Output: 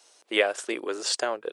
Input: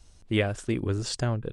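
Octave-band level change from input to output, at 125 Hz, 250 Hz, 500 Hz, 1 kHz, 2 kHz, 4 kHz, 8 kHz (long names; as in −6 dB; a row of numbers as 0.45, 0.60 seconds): below −35 dB, −6.5 dB, +3.5 dB, +6.0 dB, +6.0 dB, +6.0 dB, +6.0 dB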